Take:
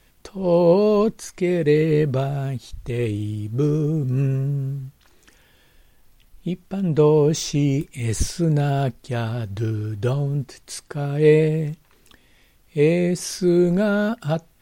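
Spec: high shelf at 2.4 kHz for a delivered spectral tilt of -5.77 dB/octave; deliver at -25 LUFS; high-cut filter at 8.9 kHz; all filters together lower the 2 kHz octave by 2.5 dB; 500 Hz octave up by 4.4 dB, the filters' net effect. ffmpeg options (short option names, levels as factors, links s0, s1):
-af "lowpass=8900,equalizer=f=500:t=o:g=5,equalizer=f=2000:t=o:g=-8.5,highshelf=f=2400:g=9,volume=0.473"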